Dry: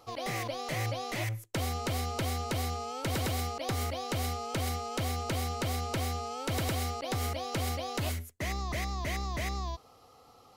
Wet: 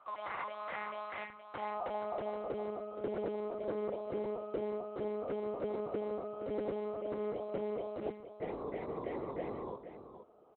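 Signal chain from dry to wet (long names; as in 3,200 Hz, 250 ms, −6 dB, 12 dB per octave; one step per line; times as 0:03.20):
one-pitch LPC vocoder at 8 kHz 210 Hz
band-pass filter sweep 1,200 Hz → 430 Hz, 0:01.21–0:02.72
single-tap delay 471 ms −10.5 dB
level +3.5 dB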